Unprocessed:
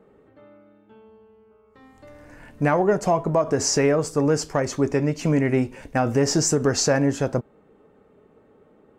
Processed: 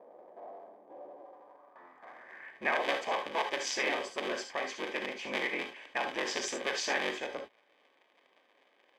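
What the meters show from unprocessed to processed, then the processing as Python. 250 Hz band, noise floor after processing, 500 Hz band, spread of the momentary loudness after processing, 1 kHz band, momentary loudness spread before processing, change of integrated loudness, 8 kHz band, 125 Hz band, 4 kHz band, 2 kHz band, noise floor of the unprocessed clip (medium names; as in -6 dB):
-21.0 dB, -69 dBFS, -15.0 dB, 19 LU, -8.0 dB, 6 LU, -12.0 dB, -15.5 dB, -36.0 dB, -5.5 dB, -1.5 dB, -57 dBFS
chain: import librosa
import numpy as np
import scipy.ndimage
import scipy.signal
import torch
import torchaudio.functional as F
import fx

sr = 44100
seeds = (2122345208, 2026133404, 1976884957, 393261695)

y = fx.cycle_switch(x, sr, every=3, mode='inverted')
y = fx.peak_eq(y, sr, hz=120.0, db=-8.0, octaves=1.2)
y = fx.notch_comb(y, sr, f0_hz=1400.0)
y = fx.filter_sweep_bandpass(y, sr, from_hz=680.0, to_hz=2800.0, start_s=1.18, end_s=2.84, q=2.2)
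y = fx.high_shelf(y, sr, hz=2600.0, db=-10.0)
y = fx.rev_gated(y, sr, seeds[0], gate_ms=90, shape='rising', drr_db=5.5)
y = F.gain(torch.from_numpy(y), 6.5).numpy()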